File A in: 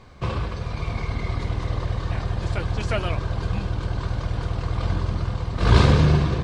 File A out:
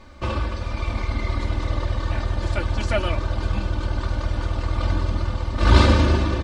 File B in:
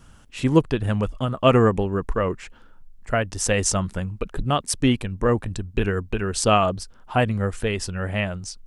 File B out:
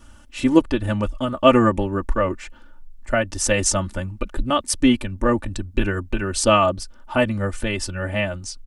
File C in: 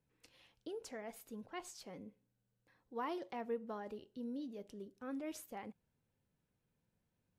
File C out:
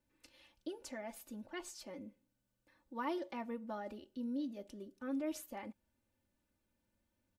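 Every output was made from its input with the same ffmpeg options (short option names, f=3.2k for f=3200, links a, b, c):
-af "aecho=1:1:3.4:0.85"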